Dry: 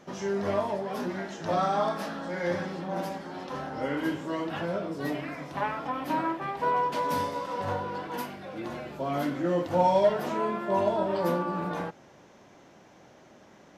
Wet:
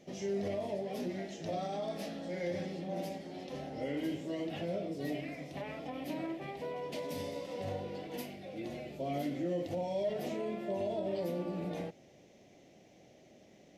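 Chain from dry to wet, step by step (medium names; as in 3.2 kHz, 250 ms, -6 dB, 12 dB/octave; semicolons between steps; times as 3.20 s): peak limiter -22 dBFS, peak gain reduction 8.5 dB; high-order bell 1.2 kHz -15.5 dB 1.1 oct; trim -4.5 dB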